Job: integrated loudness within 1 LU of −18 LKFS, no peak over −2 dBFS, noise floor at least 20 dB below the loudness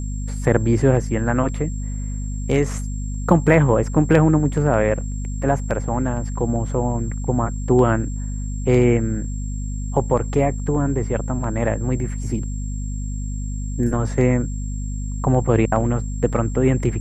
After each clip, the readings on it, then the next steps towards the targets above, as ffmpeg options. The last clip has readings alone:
mains hum 50 Hz; hum harmonics up to 250 Hz; level of the hum −23 dBFS; interfering tone 7,500 Hz; level of the tone −40 dBFS; integrated loudness −21.0 LKFS; sample peak −1.5 dBFS; target loudness −18.0 LKFS
→ -af "bandreject=frequency=50:width_type=h:width=6,bandreject=frequency=100:width_type=h:width=6,bandreject=frequency=150:width_type=h:width=6,bandreject=frequency=200:width_type=h:width=6,bandreject=frequency=250:width_type=h:width=6"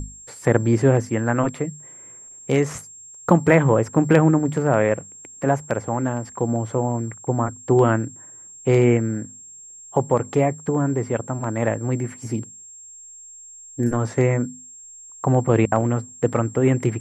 mains hum none found; interfering tone 7,500 Hz; level of the tone −40 dBFS
→ -af "bandreject=frequency=7500:width=30"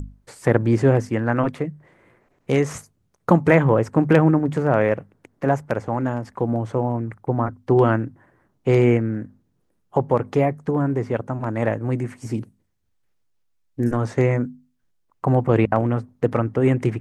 interfering tone none found; integrated loudness −21.5 LKFS; sample peak −1.5 dBFS; target loudness −18.0 LKFS
→ -af "volume=3.5dB,alimiter=limit=-2dB:level=0:latency=1"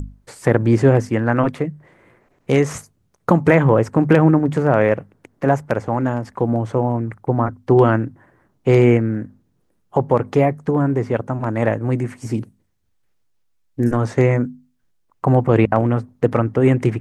integrated loudness −18.0 LKFS; sample peak −2.0 dBFS; background noise floor −65 dBFS

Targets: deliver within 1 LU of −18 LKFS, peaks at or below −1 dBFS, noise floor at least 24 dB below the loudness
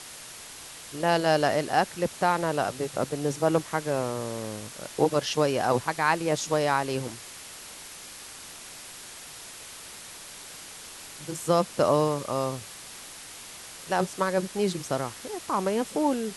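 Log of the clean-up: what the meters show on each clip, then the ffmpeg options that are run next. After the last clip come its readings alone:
background noise floor −44 dBFS; target noise floor −51 dBFS; integrated loudness −27.0 LKFS; sample peak −8.0 dBFS; target loudness −18.0 LKFS
→ -af "afftdn=noise_reduction=7:noise_floor=-44"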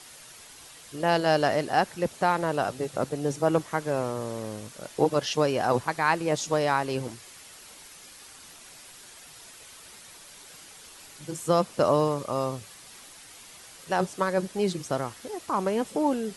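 background noise floor −49 dBFS; target noise floor −51 dBFS
→ -af "afftdn=noise_reduction=6:noise_floor=-49"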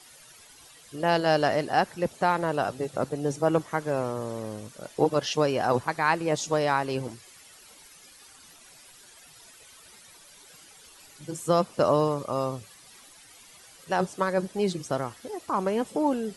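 background noise floor −53 dBFS; integrated loudness −27.0 LKFS; sample peak −8.5 dBFS; target loudness −18.0 LKFS
→ -af "volume=9dB,alimiter=limit=-1dB:level=0:latency=1"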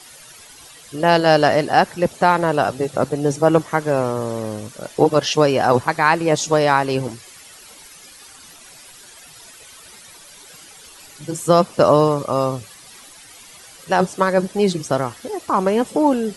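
integrated loudness −18.0 LKFS; sample peak −1.0 dBFS; background noise floor −44 dBFS

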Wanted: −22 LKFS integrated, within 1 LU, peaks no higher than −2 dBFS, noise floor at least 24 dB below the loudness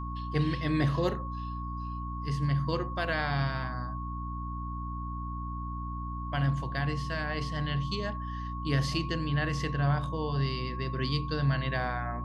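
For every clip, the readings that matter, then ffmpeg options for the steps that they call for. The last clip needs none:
mains hum 60 Hz; hum harmonics up to 300 Hz; level of the hum −34 dBFS; interfering tone 1,100 Hz; level of the tone −39 dBFS; integrated loudness −32.0 LKFS; sample peak −15.0 dBFS; target loudness −22.0 LKFS
→ -af "bandreject=frequency=60:width_type=h:width=6,bandreject=frequency=120:width_type=h:width=6,bandreject=frequency=180:width_type=h:width=6,bandreject=frequency=240:width_type=h:width=6,bandreject=frequency=300:width_type=h:width=6"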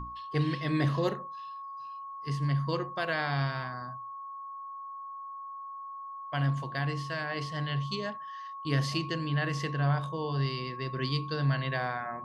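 mains hum none found; interfering tone 1,100 Hz; level of the tone −39 dBFS
→ -af "bandreject=frequency=1100:width=30"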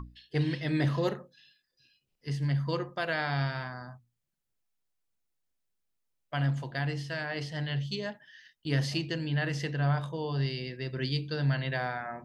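interfering tone none found; integrated loudness −32.0 LKFS; sample peak −15.0 dBFS; target loudness −22.0 LKFS
→ -af "volume=10dB"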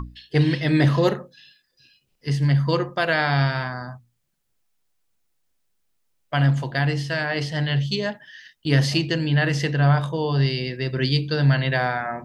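integrated loudness −22.0 LKFS; sample peak −5.0 dBFS; background noise floor −71 dBFS

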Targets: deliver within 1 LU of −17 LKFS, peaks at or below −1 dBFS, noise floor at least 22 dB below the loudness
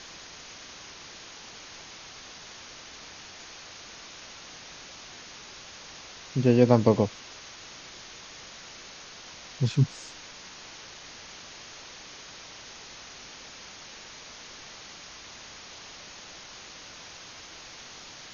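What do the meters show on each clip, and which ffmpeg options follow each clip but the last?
background noise floor −46 dBFS; target noise floor −56 dBFS; integrated loudness −33.5 LKFS; sample peak −4.0 dBFS; target loudness −17.0 LKFS
→ -af "afftdn=noise_reduction=10:noise_floor=-46"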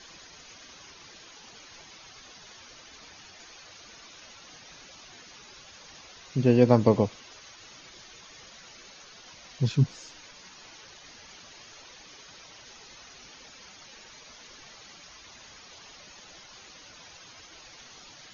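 background noise floor −50 dBFS; integrated loudness −24.0 LKFS; sample peak −4.0 dBFS; target loudness −17.0 LKFS
→ -af "volume=7dB,alimiter=limit=-1dB:level=0:latency=1"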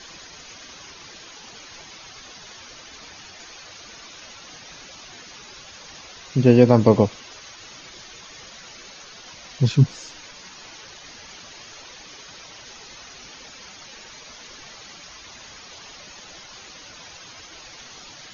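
integrated loudness −17.5 LKFS; sample peak −1.0 dBFS; background noise floor −43 dBFS

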